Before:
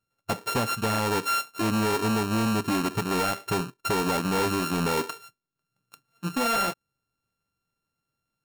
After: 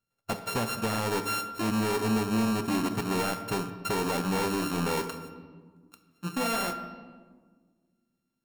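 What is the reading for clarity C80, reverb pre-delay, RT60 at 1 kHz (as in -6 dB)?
12.0 dB, 4 ms, 1.4 s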